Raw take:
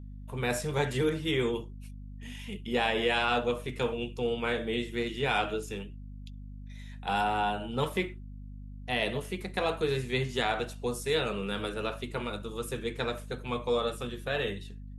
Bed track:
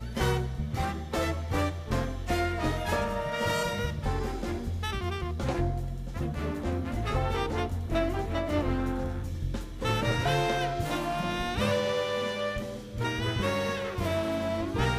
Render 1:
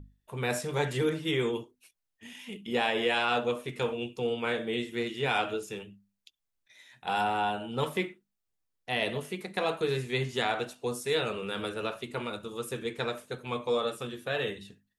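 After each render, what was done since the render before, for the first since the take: hum notches 50/100/150/200/250 Hz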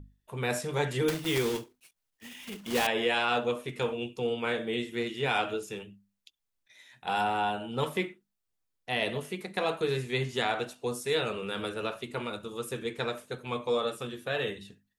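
1.08–2.87 s: block-companded coder 3-bit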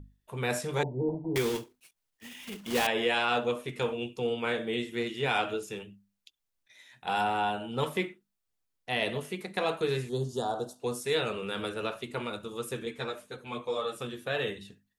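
0.83–1.36 s: rippled Chebyshev low-pass 970 Hz, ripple 3 dB; 10.09–10.80 s: Butterworth band-stop 2.2 kHz, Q 0.61; 12.85–13.96 s: three-phase chorus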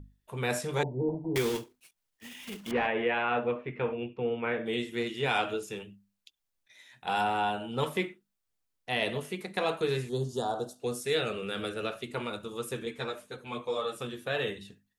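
2.71–4.66 s: Chebyshev low-pass 2.3 kHz, order 3; 10.69–12.13 s: peaking EQ 960 Hz -9.5 dB 0.29 oct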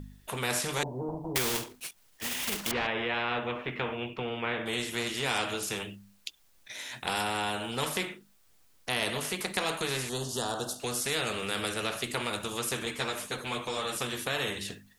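in parallel at +1 dB: compression, threshold -38 dBFS, peak gain reduction 14 dB; on the sum: spectrum-flattening compressor 2:1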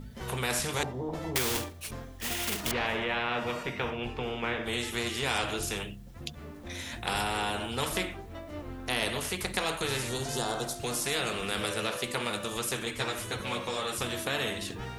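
add bed track -12.5 dB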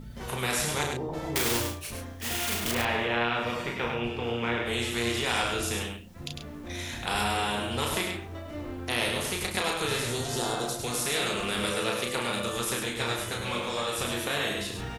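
doubling 34 ms -4 dB; on a send: delay 102 ms -5.5 dB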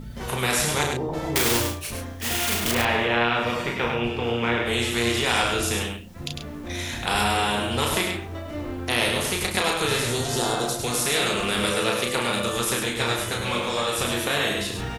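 trim +5.5 dB

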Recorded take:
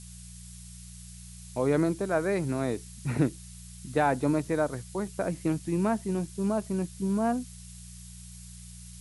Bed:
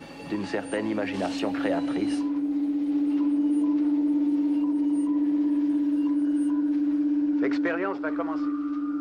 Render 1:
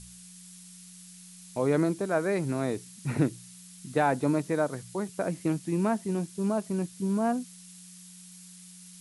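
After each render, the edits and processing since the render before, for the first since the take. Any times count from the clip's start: de-hum 60 Hz, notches 2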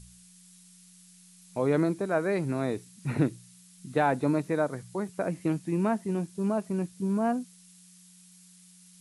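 noise print and reduce 6 dB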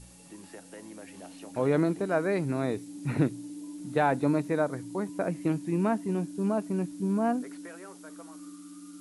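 add bed -18 dB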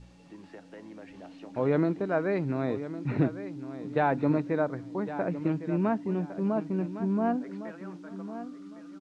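distance through air 180 m; feedback delay 1108 ms, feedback 23%, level -12.5 dB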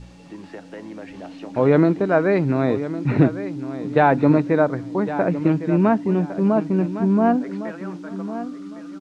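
trim +10 dB

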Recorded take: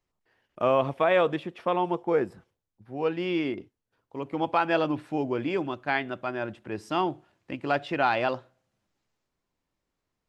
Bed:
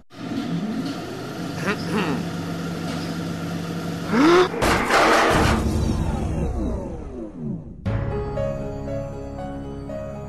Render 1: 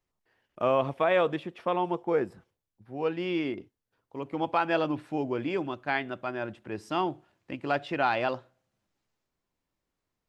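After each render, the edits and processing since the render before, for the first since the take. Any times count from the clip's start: trim -2 dB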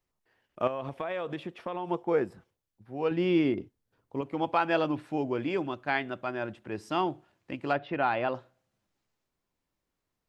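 0.67–1.90 s: compression, threshold -30 dBFS; 3.11–4.21 s: bass shelf 460 Hz +8 dB; 7.73–8.35 s: distance through air 280 m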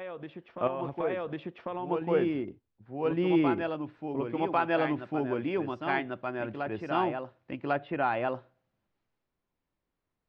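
distance through air 220 m; reverse echo 1098 ms -5.5 dB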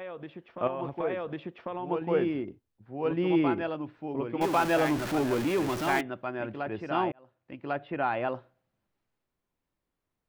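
4.41–6.01 s: jump at every zero crossing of -29.5 dBFS; 7.12–8.29 s: fade in equal-power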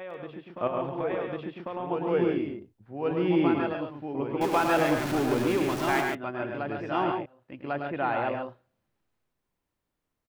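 loudspeakers at several distances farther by 36 m -6 dB, 48 m -6 dB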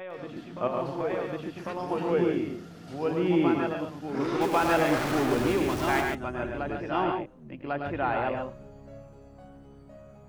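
add bed -18 dB

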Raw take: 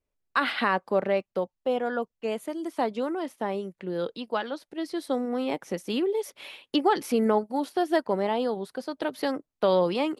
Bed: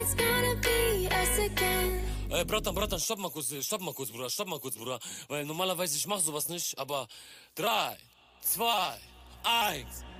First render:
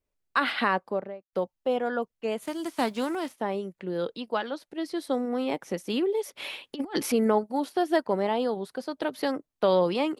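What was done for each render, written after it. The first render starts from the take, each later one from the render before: 0.66–1.33 s: studio fade out; 2.41–3.32 s: formants flattened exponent 0.6; 6.37–7.12 s: compressor with a negative ratio -29 dBFS, ratio -0.5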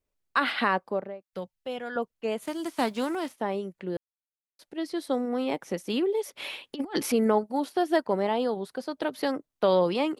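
1.28–1.96 s: high-order bell 530 Hz -8.5 dB 2.7 oct; 3.97–4.59 s: mute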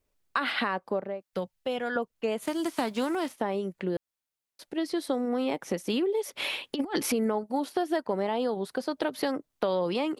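in parallel at 0 dB: peak limiter -18 dBFS, peak gain reduction 7.5 dB; on the sum: compression 3:1, threshold -27 dBFS, peak gain reduction 10 dB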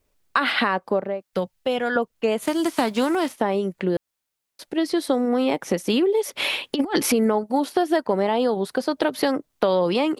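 trim +7.5 dB

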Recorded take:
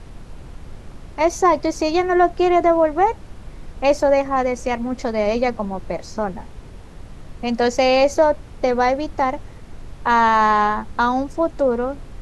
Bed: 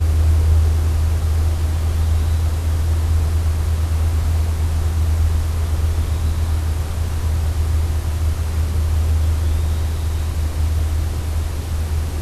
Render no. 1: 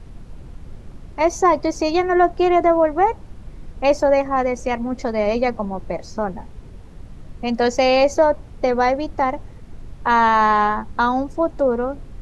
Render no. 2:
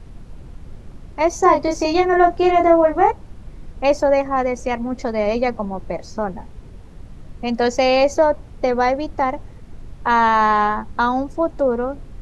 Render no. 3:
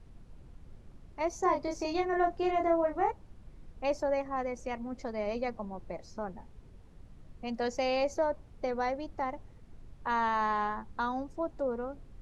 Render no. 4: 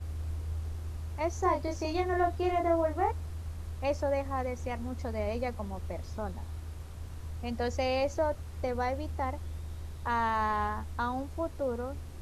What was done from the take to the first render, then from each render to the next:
noise reduction 6 dB, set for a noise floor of -39 dBFS
1.40–3.11 s: doubling 30 ms -3 dB
trim -14.5 dB
add bed -21.5 dB

